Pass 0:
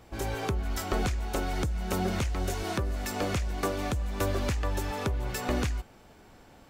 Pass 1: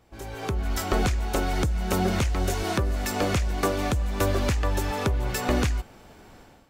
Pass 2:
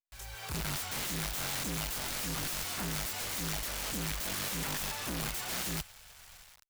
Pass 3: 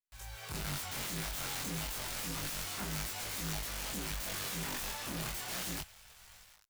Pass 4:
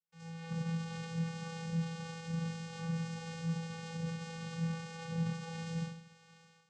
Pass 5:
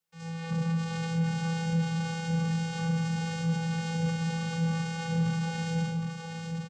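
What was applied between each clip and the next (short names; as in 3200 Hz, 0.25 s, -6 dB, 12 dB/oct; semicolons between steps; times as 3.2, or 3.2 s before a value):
AGC gain up to 12.5 dB; gain -7 dB
requantised 8-bit, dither none; passive tone stack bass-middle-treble 10-0-10; wrapped overs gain 31.5 dB
chorus 0.3 Hz, delay 19 ms, depth 5.1 ms
Schroeder reverb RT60 0.5 s, combs from 32 ms, DRR -0.5 dB; limiter -29.5 dBFS, peak gain reduction 6.5 dB; vocoder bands 8, square 165 Hz; gain +3 dB
soft clip -30 dBFS, distortion -19 dB; on a send: echo 0.765 s -5 dB; on the sum: gain +9 dB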